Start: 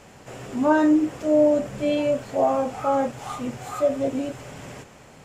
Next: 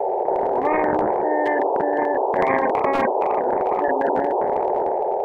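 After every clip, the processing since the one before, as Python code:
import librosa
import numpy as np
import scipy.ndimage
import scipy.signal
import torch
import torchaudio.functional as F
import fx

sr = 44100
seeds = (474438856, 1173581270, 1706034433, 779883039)

y = scipy.signal.sosfilt(scipy.signal.cheby1(5, 1.0, [370.0, 890.0], 'bandpass', fs=sr, output='sos'), x)
y = fx.transient(y, sr, attack_db=3, sustain_db=7)
y = fx.spectral_comp(y, sr, ratio=10.0)
y = y * 10.0 ** (3.0 / 20.0)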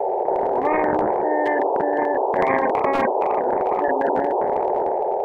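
y = x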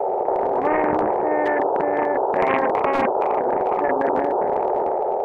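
y = fx.doppler_dist(x, sr, depth_ms=0.25)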